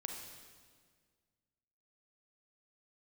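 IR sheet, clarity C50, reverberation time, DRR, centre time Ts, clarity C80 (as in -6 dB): 3.5 dB, 1.8 s, 2.0 dB, 55 ms, 5.0 dB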